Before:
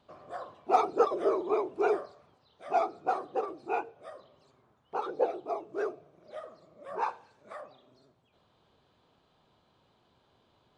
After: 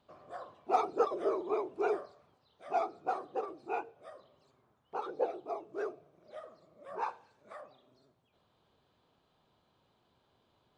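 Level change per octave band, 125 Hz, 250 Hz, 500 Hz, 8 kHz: can't be measured, −4.5 dB, −4.5 dB, can't be measured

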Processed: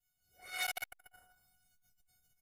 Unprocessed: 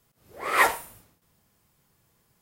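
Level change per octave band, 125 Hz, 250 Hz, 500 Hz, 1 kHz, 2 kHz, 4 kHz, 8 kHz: below −15 dB, below −25 dB, −23.0 dB, −21.5 dB, −15.5 dB, −6.0 dB, −9.5 dB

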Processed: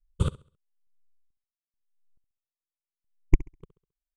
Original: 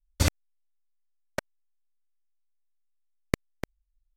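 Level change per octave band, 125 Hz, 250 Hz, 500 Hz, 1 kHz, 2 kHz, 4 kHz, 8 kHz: +1.0 dB, −0.5 dB, −5.0 dB, −7.0 dB, −12.0 dB, below −10 dB, −16.0 dB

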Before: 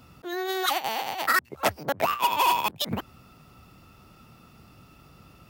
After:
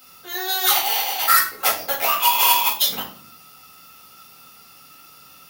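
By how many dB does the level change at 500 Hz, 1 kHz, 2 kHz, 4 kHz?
−1.5, +3.5, +4.5, +10.0 decibels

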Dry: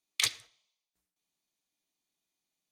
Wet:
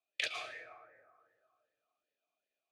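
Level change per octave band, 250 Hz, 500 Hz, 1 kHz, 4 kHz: −5.0, +7.0, +1.5, −8.5 decibels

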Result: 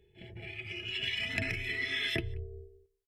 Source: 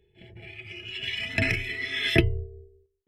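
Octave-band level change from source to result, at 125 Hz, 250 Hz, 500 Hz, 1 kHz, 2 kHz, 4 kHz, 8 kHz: −10.5, −12.0, −10.5, −9.0, −5.5, −4.0, −5.5 decibels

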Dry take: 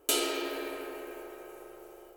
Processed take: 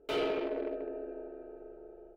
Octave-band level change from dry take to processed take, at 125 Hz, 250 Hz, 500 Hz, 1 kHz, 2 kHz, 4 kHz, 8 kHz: can't be measured, −0.5 dB, +2.5 dB, −3.5 dB, −6.0 dB, −10.5 dB, below −25 dB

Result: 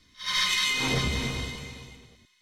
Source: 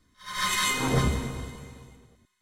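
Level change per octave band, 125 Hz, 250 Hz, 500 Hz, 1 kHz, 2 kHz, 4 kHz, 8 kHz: −3.5, −3.0, −3.0, −4.5, +2.5, +5.5, −1.5 decibels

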